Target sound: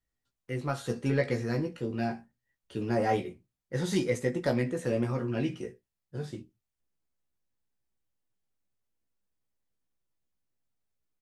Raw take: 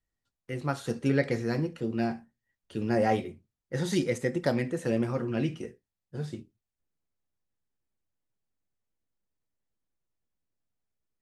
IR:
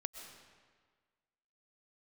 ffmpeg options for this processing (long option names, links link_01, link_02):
-filter_complex "[0:a]asplit=2[link_01][link_02];[link_02]asoftclip=type=tanh:threshold=-22dB,volume=-5.5dB[link_03];[link_01][link_03]amix=inputs=2:normalize=0,asplit=2[link_04][link_05];[link_05]adelay=16,volume=-5.5dB[link_06];[link_04][link_06]amix=inputs=2:normalize=0,volume=-5dB"